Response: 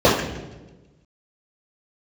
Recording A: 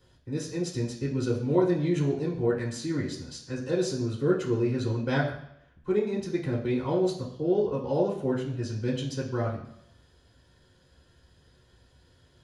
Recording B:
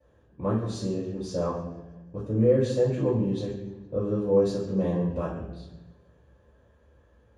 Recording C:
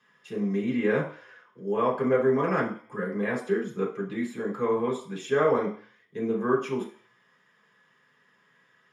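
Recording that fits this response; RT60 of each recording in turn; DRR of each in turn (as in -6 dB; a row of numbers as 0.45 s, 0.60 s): B; 0.75 s, 1.2 s, 0.45 s; -4.0 dB, -10.0 dB, -4.0 dB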